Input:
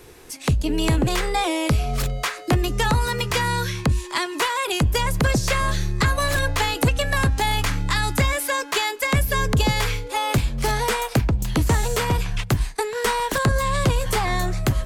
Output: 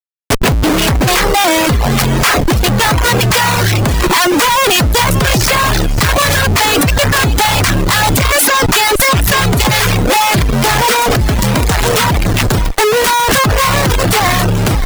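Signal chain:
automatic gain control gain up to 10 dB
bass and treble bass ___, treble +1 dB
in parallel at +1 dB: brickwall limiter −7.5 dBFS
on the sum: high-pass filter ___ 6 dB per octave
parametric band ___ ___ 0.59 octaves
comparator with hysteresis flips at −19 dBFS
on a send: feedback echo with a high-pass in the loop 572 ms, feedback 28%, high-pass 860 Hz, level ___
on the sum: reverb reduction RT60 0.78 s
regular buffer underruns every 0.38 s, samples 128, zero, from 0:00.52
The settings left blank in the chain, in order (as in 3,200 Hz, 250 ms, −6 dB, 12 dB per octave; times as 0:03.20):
+5 dB, 130 Hz, 350 Hz, −6 dB, −10.5 dB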